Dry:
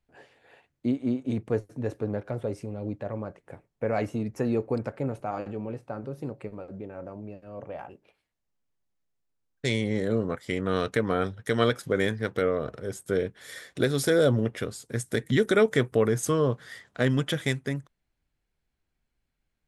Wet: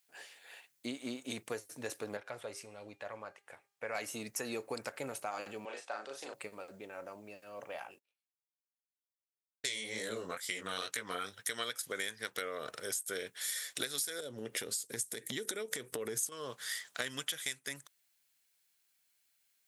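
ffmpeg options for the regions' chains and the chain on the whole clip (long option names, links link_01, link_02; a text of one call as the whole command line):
ffmpeg -i in.wav -filter_complex "[0:a]asettb=1/sr,asplit=3[link_01][link_02][link_03];[link_01]atrim=end=2.174[link_04];[link_02]atrim=start=2.17:end=3.95,asetpts=PTS-STARTPTS,afade=type=in:duration=0.004:curve=qsin,afade=type=out:start_time=1.776:duration=0.004:curve=qsin,lowpass=frequency=2500:poles=1,equalizer=frequency=240:width=0.51:gain=-8,bandreject=frequency=402.3:width_type=h:width=4,bandreject=frequency=804.6:width_type=h:width=4,bandreject=frequency=1206.9:width_type=h:width=4,bandreject=frequency=1609.2:width_type=h:width=4,bandreject=frequency=2011.5:width_type=h:width=4,bandreject=frequency=2413.8:width_type=h:width=4,bandreject=frequency=2816.1:width_type=h:width=4,bandreject=frequency=3218.4:width_type=h:width=4,bandreject=frequency=3620.7:width_type=h:width=4,bandreject=frequency=4023:width_type=h:width=4,bandreject=frequency=4425.3:width_type=h:width=4,bandreject=frequency=4827.6:width_type=h:width=4,bandreject=frequency=5229.9:width_type=h:width=4,bandreject=frequency=5632.2:width_type=h:width=4,bandreject=frequency=6034.5:width_type=h:width=4,bandreject=frequency=6436.8:width_type=h:width=4,bandreject=frequency=6839.1:width_type=h:width=4,bandreject=frequency=7241.4:width_type=h:width=4,bandreject=frequency=7643.7:width_type=h:width=4,bandreject=frequency=8046:width_type=h:width=4,bandreject=frequency=8448.3:width_type=h:width=4,bandreject=frequency=8850.6:width_type=h:width=4,bandreject=frequency=9252.9:width_type=h:width=4,bandreject=frequency=9655.2:width_type=h:width=4,bandreject=frequency=10057.5:width_type=h:width=4,bandreject=frequency=10459.8:width_type=h:width=4,bandreject=frequency=10862.1:width_type=h:width=4[link_05];[link_03]atrim=start=3.946[link_06];[link_04][link_05]acrossfade=duration=0.004:curve1=hsin:curve2=qsin[link_07];[link_07][link_06]acrossfade=duration=0.004:curve1=qsin:curve2=hsin,asettb=1/sr,asplit=3[link_08][link_09][link_10];[link_08]atrim=end=5.654[link_11];[link_09]atrim=start=5.65:end=6.34,asetpts=PTS-STARTPTS,afade=type=in:duration=0.004:curve=qsin,afade=type=out:start_time=0.686:duration=0.004:curve=qsin,highpass=440,equalizer=frequency=690:width_type=q:width=4:gain=4,equalizer=frequency=1700:width_type=q:width=4:gain=5,equalizer=frequency=3400:width_type=q:width=4:gain=6,lowpass=frequency=8100:width=0.5412,lowpass=frequency=8100:width=1.3066,asplit=2[link_12][link_13];[link_13]adelay=37,volume=-3.5dB[link_14];[link_12][link_14]amix=inputs=2:normalize=0,atrim=end_sample=30429[link_15];[link_10]atrim=start=6.336[link_16];[link_11][link_15]acrossfade=duration=0.004:curve1=hsin:curve2=qsin[link_17];[link_17][link_16]acrossfade=duration=0.004:curve1=qsin:curve2=hsin,asettb=1/sr,asplit=3[link_18][link_19][link_20];[link_18]atrim=end=7.794[link_21];[link_19]atrim=start=7.79:end=11.33,asetpts=PTS-STARTPTS,afade=type=in:duration=0.004:curve=qsin,afade=type=out:start_time=3.536:duration=0.004:curve=qsin,flanger=delay=16.5:depth=6.3:speed=2.2,agate=range=-25dB:threshold=-57dB:ratio=16:release=100:detection=peak[link_22];[link_20]atrim=start=11.326[link_23];[link_21][link_22]acrossfade=duration=0.004:curve1=hsin:curve2=qsin[link_24];[link_24][link_23]acrossfade=duration=0.004:curve1=qsin:curve2=hsin,asettb=1/sr,asplit=3[link_25][link_26][link_27];[link_25]atrim=end=14.204[link_28];[link_26]atrim=start=14.2:end=16.32,asetpts=PTS-STARTPTS,afade=type=in:duration=0.004:curve=qsin,afade=type=out:start_time=2.116:duration=0.004:curve=qsin,lowshelf=frequency=620:width_type=q:width=1.5:gain=7.5,acompressor=threshold=-22dB:ratio=12:attack=3.2:release=140:knee=1:detection=peak[link_29];[link_27]atrim=start=16.316[link_30];[link_28][link_29]acrossfade=duration=0.004:curve1=hsin:curve2=qsin[link_31];[link_31][link_30]acrossfade=duration=0.004:curve1=qsin:curve2=hsin,aderivative,acompressor=threshold=-50dB:ratio=8,volume=15.5dB" out.wav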